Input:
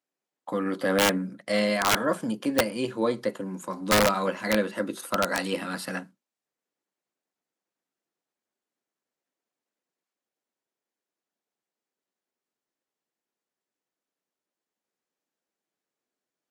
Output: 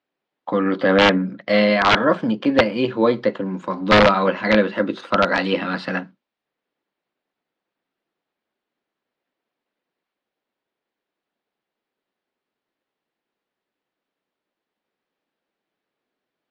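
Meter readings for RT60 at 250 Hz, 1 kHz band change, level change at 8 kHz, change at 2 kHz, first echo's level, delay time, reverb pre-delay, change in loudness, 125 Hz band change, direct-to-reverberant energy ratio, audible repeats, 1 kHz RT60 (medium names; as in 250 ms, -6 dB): no reverb, +8.5 dB, under -10 dB, +8.5 dB, no echo, no echo, no reverb, +8.0 dB, +8.5 dB, no reverb, no echo, no reverb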